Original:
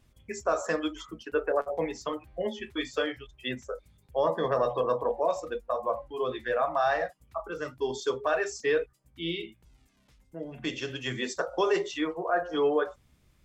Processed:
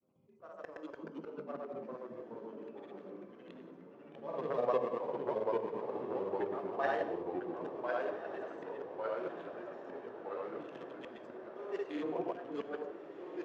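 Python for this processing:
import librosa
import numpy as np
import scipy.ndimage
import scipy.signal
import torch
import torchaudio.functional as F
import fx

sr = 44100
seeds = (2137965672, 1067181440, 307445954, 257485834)

y = fx.wiener(x, sr, points=25)
y = scipy.signal.sosfilt(scipy.signal.butter(4, 170.0, 'highpass', fs=sr, output='sos'), y)
y = fx.high_shelf(y, sr, hz=3900.0, db=-11.0)
y = fx.hum_notches(y, sr, base_hz=60, count=10)
y = fx.auto_swell(y, sr, attack_ms=627.0)
y = fx.granulator(y, sr, seeds[0], grain_ms=100.0, per_s=20.0, spray_ms=100.0, spread_st=0)
y = fx.echo_pitch(y, sr, ms=215, semitones=-2, count=3, db_per_echo=-3.0)
y = fx.echo_diffused(y, sr, ms=1413, feedback_pct=68, wet_db=-12.0)
y = fx.rev_gated(y, sr, seeds[1], gate_ms=220, shape='flat', drr_db=11.0)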